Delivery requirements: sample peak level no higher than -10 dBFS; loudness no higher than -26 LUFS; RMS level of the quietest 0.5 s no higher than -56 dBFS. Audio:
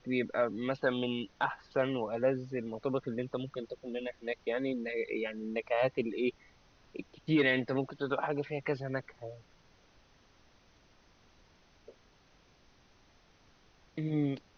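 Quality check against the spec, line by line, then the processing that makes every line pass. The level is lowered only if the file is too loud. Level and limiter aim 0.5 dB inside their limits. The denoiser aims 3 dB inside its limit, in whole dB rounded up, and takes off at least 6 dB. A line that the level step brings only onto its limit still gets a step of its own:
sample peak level -16.5 dBFS: pass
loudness -34.0 LUFS: pass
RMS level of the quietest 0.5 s -64 dBFS: pass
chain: none needed

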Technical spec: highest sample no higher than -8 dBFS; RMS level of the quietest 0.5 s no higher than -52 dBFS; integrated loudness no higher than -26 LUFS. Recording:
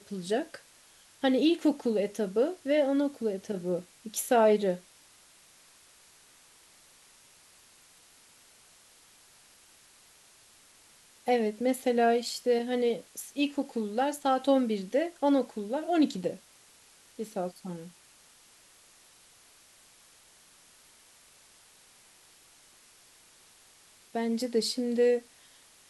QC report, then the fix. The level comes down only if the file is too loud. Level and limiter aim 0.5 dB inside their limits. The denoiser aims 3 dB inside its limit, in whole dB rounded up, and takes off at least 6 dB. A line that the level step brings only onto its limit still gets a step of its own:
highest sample -12.5 dBFS: pass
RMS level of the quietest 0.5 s -59 dBFS: pass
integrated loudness -29.0 LUFS: pass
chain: none needed

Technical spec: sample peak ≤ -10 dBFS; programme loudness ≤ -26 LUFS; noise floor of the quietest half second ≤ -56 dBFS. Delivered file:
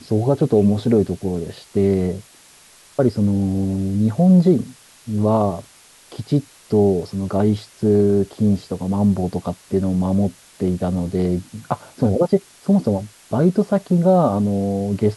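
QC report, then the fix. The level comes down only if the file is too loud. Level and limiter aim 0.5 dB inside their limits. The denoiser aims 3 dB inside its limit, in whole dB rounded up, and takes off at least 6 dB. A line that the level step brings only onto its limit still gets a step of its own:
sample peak -4.0 dBFS: fail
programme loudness -19.5 LUFS: fail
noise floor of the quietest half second -49 dBFS: fail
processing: noise reduction 6 dB, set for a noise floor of -49 dBFS; trim -7 dB

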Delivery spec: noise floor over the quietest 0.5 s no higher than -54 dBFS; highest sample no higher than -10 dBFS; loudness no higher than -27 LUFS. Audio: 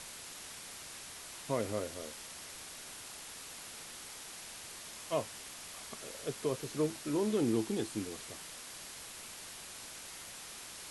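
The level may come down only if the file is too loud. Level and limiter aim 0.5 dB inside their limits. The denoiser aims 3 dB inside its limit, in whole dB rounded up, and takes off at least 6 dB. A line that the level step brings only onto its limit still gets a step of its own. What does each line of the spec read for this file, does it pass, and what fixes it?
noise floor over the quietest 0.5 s -48 dBFS: fail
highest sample -20.0 dBFS: pass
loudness -39.5 LUFS: pass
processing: noise reduction 9 dB, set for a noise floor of -48 dBFS

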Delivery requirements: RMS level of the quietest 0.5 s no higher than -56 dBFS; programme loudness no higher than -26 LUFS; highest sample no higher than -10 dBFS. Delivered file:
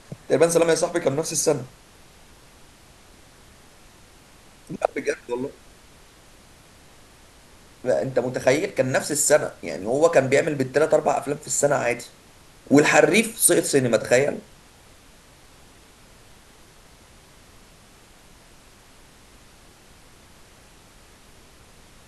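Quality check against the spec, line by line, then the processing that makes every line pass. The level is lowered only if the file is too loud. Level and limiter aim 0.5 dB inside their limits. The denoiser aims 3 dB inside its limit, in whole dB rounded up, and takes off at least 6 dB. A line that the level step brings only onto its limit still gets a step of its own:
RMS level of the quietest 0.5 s -51 dBFS: fail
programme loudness -21.0 LUFS: fail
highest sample -2.5 dBFS: fail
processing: trim -5.5 dB; peak limiter -10.5 dBFS

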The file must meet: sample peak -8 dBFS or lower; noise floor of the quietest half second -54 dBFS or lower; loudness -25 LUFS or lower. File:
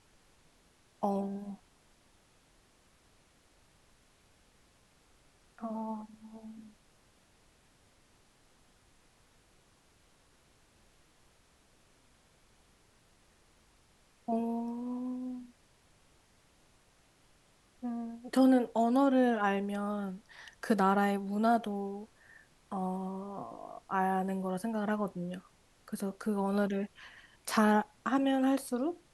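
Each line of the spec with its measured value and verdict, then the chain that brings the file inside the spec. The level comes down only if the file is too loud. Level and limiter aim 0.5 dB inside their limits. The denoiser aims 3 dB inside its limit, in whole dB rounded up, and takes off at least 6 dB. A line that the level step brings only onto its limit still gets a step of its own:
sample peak -14.5 dBFS: pass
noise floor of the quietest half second -66 dBFS: pass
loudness -32.5 LUFS: pass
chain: none needed

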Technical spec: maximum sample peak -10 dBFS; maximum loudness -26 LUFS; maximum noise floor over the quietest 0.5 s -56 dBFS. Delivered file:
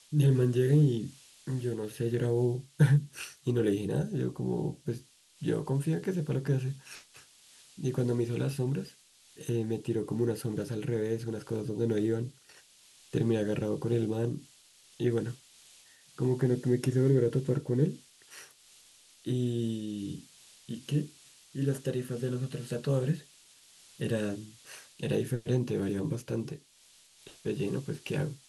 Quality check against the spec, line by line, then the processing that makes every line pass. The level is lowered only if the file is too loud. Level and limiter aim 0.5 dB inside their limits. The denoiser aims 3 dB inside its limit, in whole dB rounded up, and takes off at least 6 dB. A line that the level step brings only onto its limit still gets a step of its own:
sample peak -12.0 dBFS: pass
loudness -31.0 LUFS: pass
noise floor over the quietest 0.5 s -61 dBFS: pass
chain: none needed

